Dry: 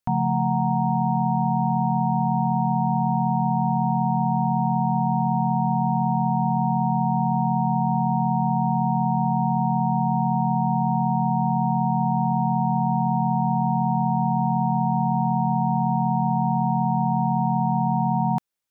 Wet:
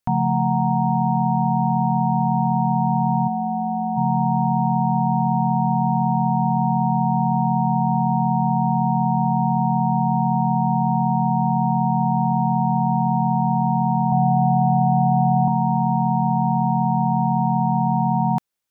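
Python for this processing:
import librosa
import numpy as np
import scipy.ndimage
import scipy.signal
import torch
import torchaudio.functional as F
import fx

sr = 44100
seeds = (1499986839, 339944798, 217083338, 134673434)

y = fx.fixed_phaser(x, sr, hz=690.0, stages=8, at=(3.27, 3.96), fade=0.02)
y = fx.comb(y, sr, ms=1.5, depth=0.86, at=(14.12, 15.48))
y = y * 10.0 ** (2.5 / 20.0)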